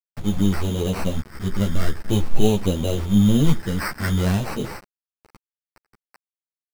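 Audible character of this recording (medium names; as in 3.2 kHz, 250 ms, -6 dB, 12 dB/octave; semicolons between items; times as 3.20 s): a quantiser's noise floor 6-bit, dither none; phasing stages 6, 0.46 Hz, lowest notch 790–1700 Hz; aliases and images of a low sample rate 3.4 kHz, jitter 0%; a shimmering, thickened sound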